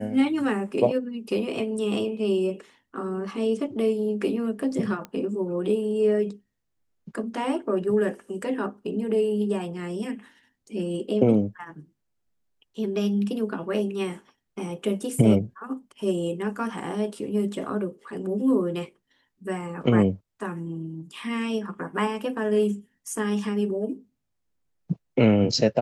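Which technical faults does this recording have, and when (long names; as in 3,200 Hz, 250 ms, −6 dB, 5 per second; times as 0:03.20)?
0:05.05: click −21 dBFS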